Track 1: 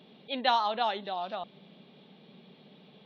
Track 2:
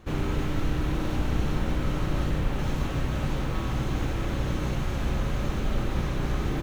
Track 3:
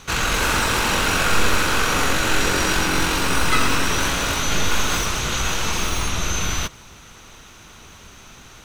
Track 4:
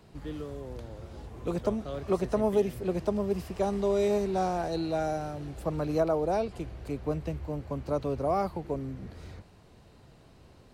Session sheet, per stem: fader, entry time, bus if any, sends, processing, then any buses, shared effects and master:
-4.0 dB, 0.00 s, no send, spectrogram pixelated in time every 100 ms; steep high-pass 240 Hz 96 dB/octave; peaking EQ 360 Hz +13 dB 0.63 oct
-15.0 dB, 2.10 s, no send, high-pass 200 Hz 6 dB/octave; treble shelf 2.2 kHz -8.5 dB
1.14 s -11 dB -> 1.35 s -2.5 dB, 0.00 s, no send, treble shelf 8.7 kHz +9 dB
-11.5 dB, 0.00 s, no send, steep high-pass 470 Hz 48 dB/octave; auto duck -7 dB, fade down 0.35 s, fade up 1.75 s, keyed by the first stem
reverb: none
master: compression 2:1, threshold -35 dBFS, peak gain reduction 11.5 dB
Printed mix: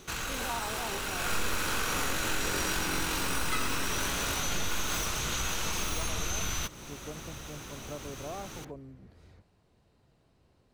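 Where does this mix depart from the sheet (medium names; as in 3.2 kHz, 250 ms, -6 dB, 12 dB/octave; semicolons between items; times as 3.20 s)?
stem 1: missing steep high-pass 240 Hz 96 dB/octave; stem 4: missing steep high-pass 470 Hz 48 dB/octave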